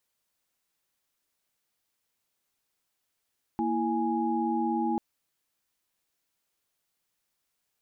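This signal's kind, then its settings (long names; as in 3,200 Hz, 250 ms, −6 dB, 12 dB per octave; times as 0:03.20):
held notes A#3/E4/G#5 sine, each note −29.5 dBFS 1.39 s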